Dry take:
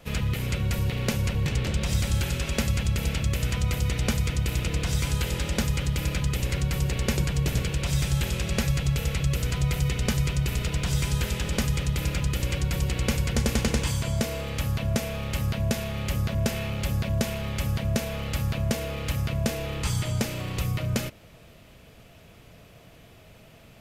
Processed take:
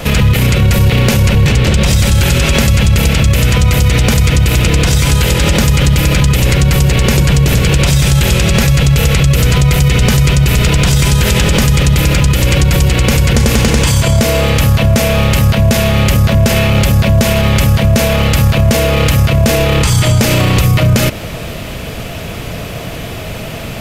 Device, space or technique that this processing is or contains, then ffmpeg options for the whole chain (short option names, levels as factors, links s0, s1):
loud club master: -af "acompressor=threshold=0.0355:ratio=2,asoftclip=type=hard:threshold=0.106,alimiter=level_in=28.2:limit=0.891:release=50:level=0:latency=1,volume=0.891"